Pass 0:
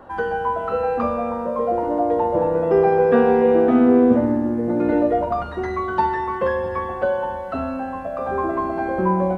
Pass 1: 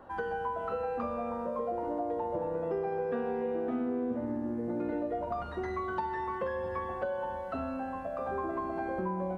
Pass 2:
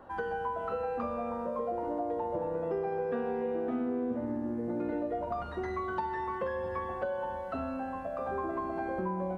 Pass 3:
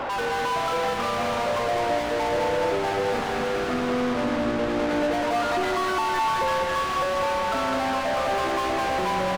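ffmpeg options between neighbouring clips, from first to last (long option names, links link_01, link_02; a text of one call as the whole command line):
ffmpeg -i in.wav -af "acompressor=threshold=-22dB:ratio=5,volume=-8.5dB" out.wav
ffmpeg -i in.wav -af anull out.wav
ffmpeg -i in.wav -filter_complex "[0:a]asplit=2[link_01][link_02];[link_02]highpass=frequency=720:poles=1,volume=39dB,asoftclip=type=tanh:threshold=-21dB[link_03];[link_01][link_03]amix=inputs=2:normalize=0,lowpass=frequency=3600:poles=1,volume=-6dB,aecho=1:1:206|412|618|824|1030|1236|1442|1648:0.631|0.366|0.212|0.123|0.0714|0.0414|0.024|0.0139" out.wav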